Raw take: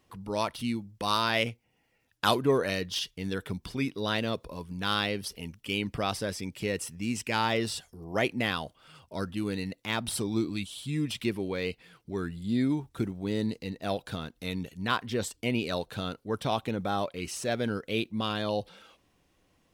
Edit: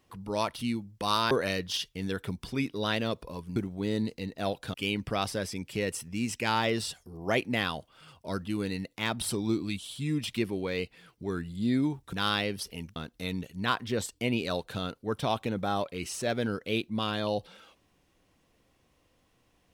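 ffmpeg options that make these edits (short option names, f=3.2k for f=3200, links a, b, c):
-filter_complex "[0:a]asplit=6[a][b][c][d][e][f];[a]atrim=end=1.312[g];[b]atrim=start=2.528:end=4.782[h];[c]atrim=start=12.998:end=14.182[i];[d]atrim=start=5.608:end=13.002[j];[e]atrim=start=4.778:end=5.612[k];[f]atrim=start=14.178[l];[g][h]acrossfade=d=0.004:c1=hsin:c2=hsin[m];[m][i]acrossfade=d=0.004:c1=hsin:c2=hsin[n];[n][j]acrossfade=d=0.004:c1=hsin:c2=hsin[o];[o][k]acrossfade=d=0.004:c1=hsin:c2=hsin[p];[p][l]acrossfade=d=0.004:c1=hsin:c2=hsin"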